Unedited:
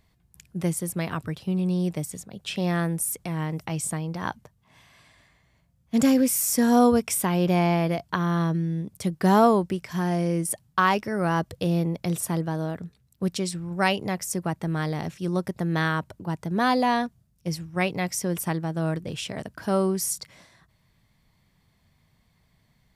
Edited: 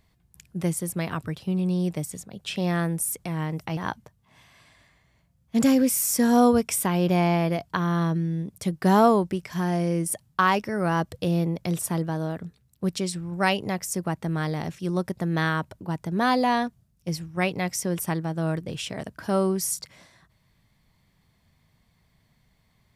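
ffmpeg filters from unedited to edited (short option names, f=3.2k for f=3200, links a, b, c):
-filter_complex "[0:a]asplit=2[a][b];[a]atrim=end=3.772[c];[b]atrim=start=4.158[d];[c][d]acrossfade=d=0.004:c1=hsin:c2=hsin"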